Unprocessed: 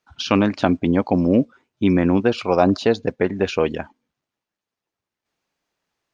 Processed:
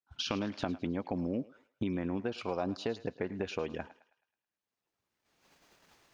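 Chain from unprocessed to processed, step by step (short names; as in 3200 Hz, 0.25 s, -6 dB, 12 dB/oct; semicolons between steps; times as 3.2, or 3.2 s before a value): recorder AGC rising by 17 dB/s; gate -47 dBFS, range -16 dB; compressor 2.5:1, threshold -28 dBFS, peak gain reduction 12 dB; thinning echo 0.107 s, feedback 48%, high-pass 640 Hz, level -15.5 dB; gain -7.5 dB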